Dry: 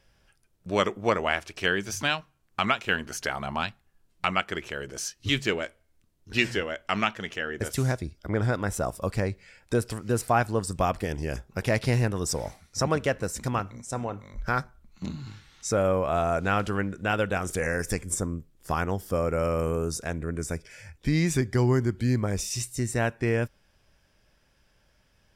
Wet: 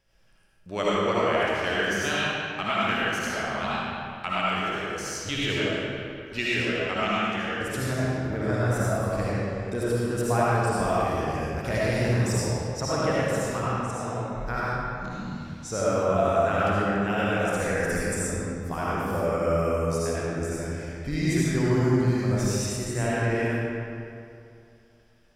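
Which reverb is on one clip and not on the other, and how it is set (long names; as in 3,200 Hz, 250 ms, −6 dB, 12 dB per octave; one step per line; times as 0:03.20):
comb and all-pass reverb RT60 2.5 s, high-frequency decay 0.7×, pre-delay 35 ms, DRR −8.5 dB
level −7 dB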